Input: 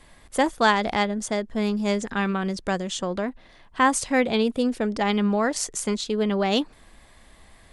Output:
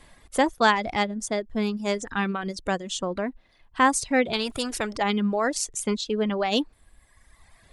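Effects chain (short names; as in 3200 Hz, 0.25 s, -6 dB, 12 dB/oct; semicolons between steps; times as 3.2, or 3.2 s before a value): reverb removal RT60 1.4 s; 4.33–4.96 spectral compressor 2:1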